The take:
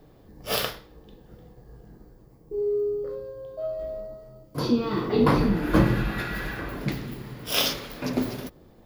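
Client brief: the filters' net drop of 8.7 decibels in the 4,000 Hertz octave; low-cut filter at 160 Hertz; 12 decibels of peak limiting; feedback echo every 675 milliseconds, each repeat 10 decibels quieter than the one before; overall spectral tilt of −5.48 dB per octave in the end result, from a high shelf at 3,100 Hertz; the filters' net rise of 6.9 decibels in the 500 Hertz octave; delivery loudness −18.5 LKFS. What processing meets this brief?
high-pass filter 160 Hz
parametric band 500 Hz +9 dB
high-shelf EQ 3,100 Hz −7.5 dB
parametric band 4,000 Hz −6 dB
brickwall limiter −16.5 dBFS
repeating echo 675 ms, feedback 32%, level −10 dB
level +8.5 dB

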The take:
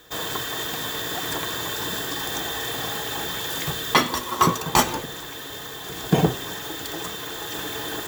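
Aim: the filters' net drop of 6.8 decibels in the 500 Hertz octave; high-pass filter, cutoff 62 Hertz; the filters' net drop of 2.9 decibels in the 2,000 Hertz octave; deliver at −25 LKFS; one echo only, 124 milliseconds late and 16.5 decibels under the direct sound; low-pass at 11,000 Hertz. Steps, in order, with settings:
high-pass filter 62 Hz
low-pass filter 11,000 Hz
parametric band 500 Hz −9 dB
parametric band 2,000 Hz −3 dB
single-tap delay 124 ms −16.5 dB
level +2.5 dB

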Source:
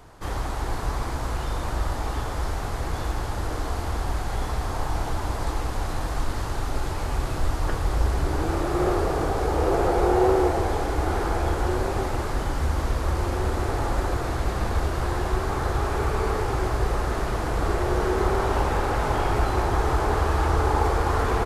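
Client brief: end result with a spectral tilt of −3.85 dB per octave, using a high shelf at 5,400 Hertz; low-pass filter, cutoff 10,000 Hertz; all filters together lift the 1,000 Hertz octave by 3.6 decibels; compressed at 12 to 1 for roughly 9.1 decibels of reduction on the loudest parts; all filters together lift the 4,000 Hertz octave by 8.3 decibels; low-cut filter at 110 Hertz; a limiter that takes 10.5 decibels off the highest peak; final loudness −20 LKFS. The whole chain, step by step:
high-pass filter 110 Hz
low-pass filter 10,000 Hz
parametric band 1,000 Hz +4 dB
parametric band 4,000 Hz +7.5 dB
high-shelf EQ 5,400 Hz +6.5 dB
downward compressor 12 to 1, threshold −24 dBFS
level +15 dB
brickwall limiter −11.5 dBFS

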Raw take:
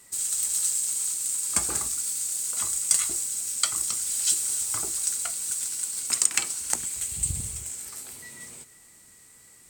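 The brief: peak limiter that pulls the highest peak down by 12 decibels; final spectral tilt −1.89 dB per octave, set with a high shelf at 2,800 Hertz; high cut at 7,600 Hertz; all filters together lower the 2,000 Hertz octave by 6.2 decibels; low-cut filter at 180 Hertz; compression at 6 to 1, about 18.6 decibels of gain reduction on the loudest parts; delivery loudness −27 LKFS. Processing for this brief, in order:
high-pass filter 180 Hz
low-pass filter 7,600 Hz
parametric band 2,000 Hz −6.5 dB
high-shelf EQ 2,800 Hz −3.5 dB
downward compressor 6 to 1, threshold −46 dBFS
level +20 dB
brickwall limiter −18.5 dBFS

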